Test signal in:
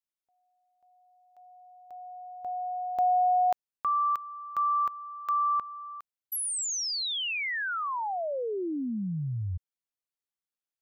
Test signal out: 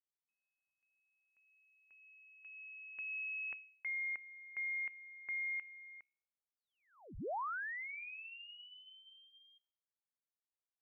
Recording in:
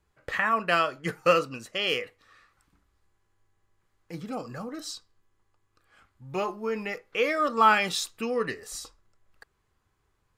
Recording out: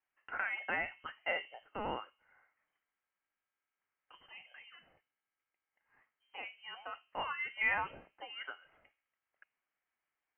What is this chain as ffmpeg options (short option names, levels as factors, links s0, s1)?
-af "aderivative,bandreject=f=66.49:t=h:w=4,bandreject=f=132.98:t=h:w=4,bandreject=f=199.47:t=h:w=4,bandreject=f=265.96:t=h:w=4,bandreject=f=332.45:t=h:w=4,bandreject=f=398.94:t=h:w=4,bandreject=f=465.43:t=h:w=4,bandreject=f=531.92:t=h:w=4,bandreject=f=598.41:t=h:w=4,bandreject=f=664.9:t=h:w=4,bandreject=f=731.39:t=h:w=4,bandreject=f=797.88:t=h:w=4,bandreject=f=864.37:t=h:w=4,bandreject=f=930.86:t=h:w=4,bandreject=f=997.35:t=h:w=4,bandreject=f=1063.84:t=h:w=4,bandreject=f=1130.33:t=h:w=4,lowpass=f=2800:t=q:w=0.5098,lowpass=f=2800:t=q:w=0.6013,lowpass=f=2800:t=q:w=0.9,lowpass=f=2800:t=q:w=2.563,afreqshift=-3300,volume=1.33"